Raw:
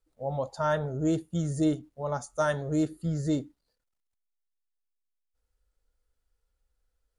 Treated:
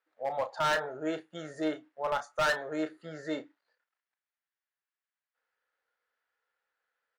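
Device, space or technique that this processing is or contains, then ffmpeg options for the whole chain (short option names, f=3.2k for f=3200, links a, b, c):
megaphone: -filter_complex "[0:a]highpass=690,lowpass=2.7k,equalizer=f=1.7k:t=o:w=0.59:g=8,asoftclip=type=hard:threshold=-29.5dB,asplit=2[a][b];[b]adelay=32,volume=-11dB[c];[a][c]amix=inputs=2:normalize=0,volume=5dB"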